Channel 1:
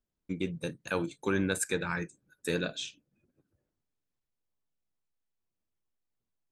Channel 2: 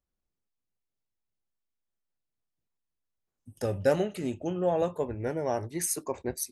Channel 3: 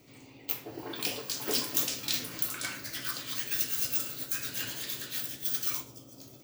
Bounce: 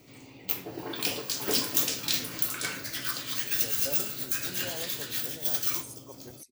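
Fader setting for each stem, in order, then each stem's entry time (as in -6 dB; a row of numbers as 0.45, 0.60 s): -16.5, -15.5, +3.0 dB; 0.15, 0.00, 0.00 s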